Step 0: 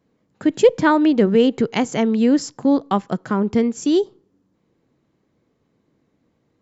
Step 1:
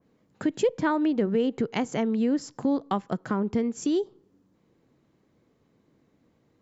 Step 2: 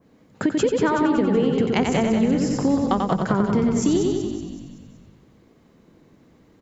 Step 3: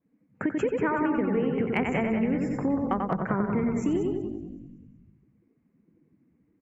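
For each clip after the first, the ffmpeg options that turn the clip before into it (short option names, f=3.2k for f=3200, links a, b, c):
-af "acompressor=threshold=-29dB:ratio=2,adynamicequalizer=threshold=0.00631:dfrequency=2400:dqfactor=0.7:tfrequency=2400:tqfactor=0.7:attack=5:release=100:ratio=0.375:range=2.5:mode=cutabove:tftype=highshelf"
-filter_complex "[0:a]asplit=2[a][b];[b]aecho=0:1:90|180|270|360|450|540:0.596|0.28|0.132|0.0618|0.0291|0.0137[c];[a][c]amix=inputs=2:normalize=0,acompressor=threshold=-26dB:ratio=6,asplit=2[d][e];[e]asplit=6[f][g][h][i][j][k];[f]adelay=188,afreqshift=-42,volume=-8dB[l];[g]adelay=376,afreqshift=-84,volume=-13.5dB[m];[h]adelay=564,afreqshift=-126,volume=-19dB[n];[i]adelay=752,afreqshift=-168,volume=-24.5dB[o];[j]adelay=940,afreqshift=-210,volume=-30.1dB[p];[k]adelay=1128,afreqshift=-252,volume=-35.6dB[q];[l][m][n][o][p][q]amix=inputs=6:normalize=0[r];[d][r]amix=inputs=2:normalize=0,volume=9dB"
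-af "highshelf=f=2.9k:t=q:w=3:g=-7.5,afftdn=nr=17:nf=-43,asoftclip=type=hard:threshold=-6.5dB,volume=-6.5dB"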